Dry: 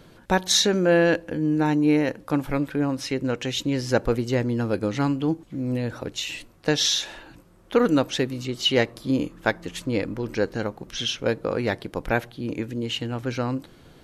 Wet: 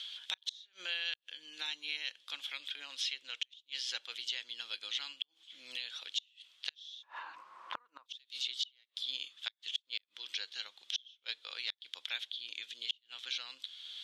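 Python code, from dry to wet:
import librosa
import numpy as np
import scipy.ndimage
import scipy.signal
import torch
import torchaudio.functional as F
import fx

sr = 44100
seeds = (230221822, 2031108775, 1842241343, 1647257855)

y = fx.ladder_bandpass(x, sr, hz=fx.steps((0.0, 3500.0), (7.02, 1100.0), (8.05, 3600.0)), resonance_pct=80)
y = fx.gate_flip(y, sr, shuts_db=-28.0, range_db=-37)
y = fx.band_squash(y, sr, depth_pct=70)
y = F.gain(torch.from_numpy(y), 8.0).numpy()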